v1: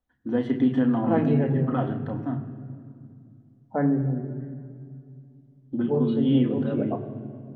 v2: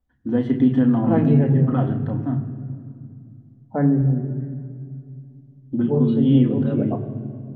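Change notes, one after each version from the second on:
master: add bass shelf 220 Hz +11 dB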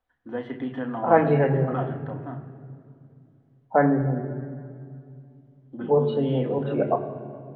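second voice +10.5 dB; master: add three-band isolator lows -18 dB, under 510 Hz, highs -14 dB, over 3.2 kHz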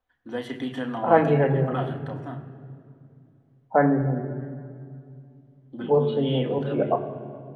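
first voice: remove low-pass 1.8 kHz 12 dB/octave

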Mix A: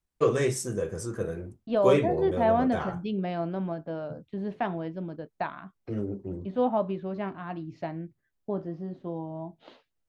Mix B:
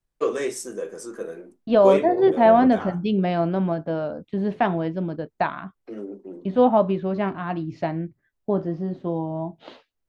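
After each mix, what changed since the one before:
first voice: add high-pass 240 Hz 24 dB/octave; second voice +8.5 dB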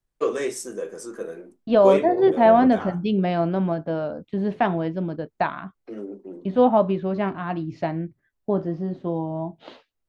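no change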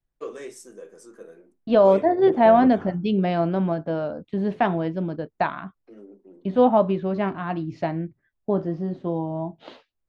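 first voice -11.0 dB

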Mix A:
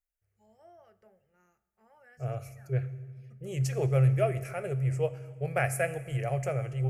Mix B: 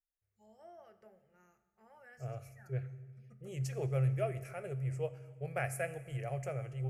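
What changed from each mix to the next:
first voice: send +7.0 dB; second voice -8.0 dB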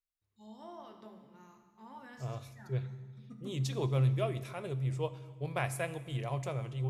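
first voice: send +10.0 dB; master: remove static phaser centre 1 kHz, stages 6

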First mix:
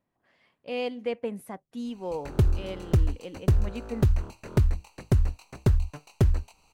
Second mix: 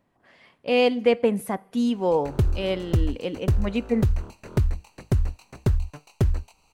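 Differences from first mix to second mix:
speech +10.5 dB; reverb: on

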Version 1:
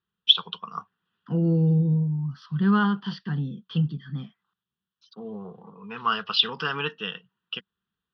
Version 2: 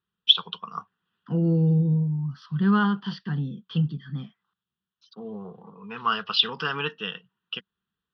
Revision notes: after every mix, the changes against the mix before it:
no change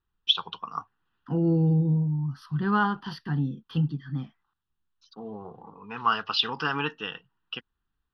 master: remove cabinet simulation 130–5900 Hz, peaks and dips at 190 Hz +10 dB, 290 Hz -8 dB, 450 Hz +3 dB, 830 Hz -7 dB, 3.3 kHz +6 dB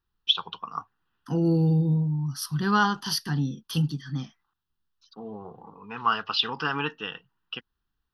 second voice: remove distance through air 420 m

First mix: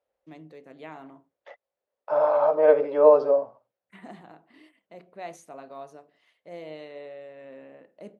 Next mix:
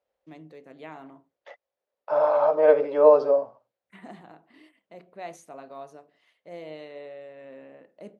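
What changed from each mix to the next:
second voice: add treble shelf 3.7 kHz +6 dB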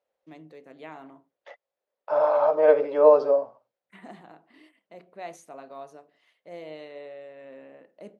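master: add bass shelf 87 Hz -11 dB

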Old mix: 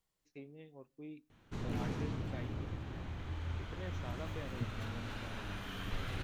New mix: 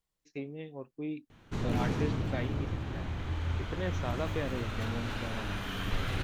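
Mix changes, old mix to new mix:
first voice +12.0 dB; background +7.0 dB; reverb: off

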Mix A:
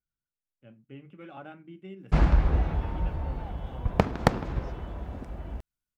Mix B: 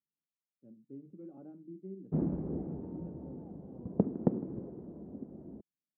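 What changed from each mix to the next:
master: add Butterworth band-pass 270 Hz, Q 1.1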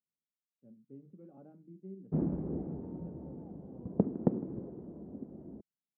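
speech: add peaking EQ 320 Hz -9 dB 0.38 oct

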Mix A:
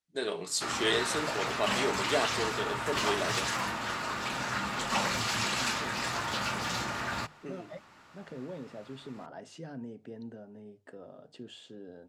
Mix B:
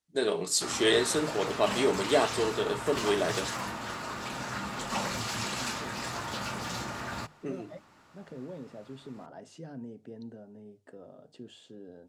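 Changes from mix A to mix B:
first voice +6.5 dB; master: add peaking EQ 2.3 kHz -5 dB 2.6 oct

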